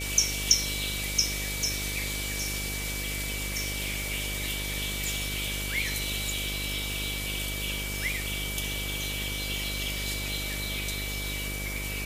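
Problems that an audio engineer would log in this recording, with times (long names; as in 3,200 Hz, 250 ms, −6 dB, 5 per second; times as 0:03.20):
mains buzz 50 Hz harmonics 13 −36 dBFS
whistle 2,300 Hz −37 dBFS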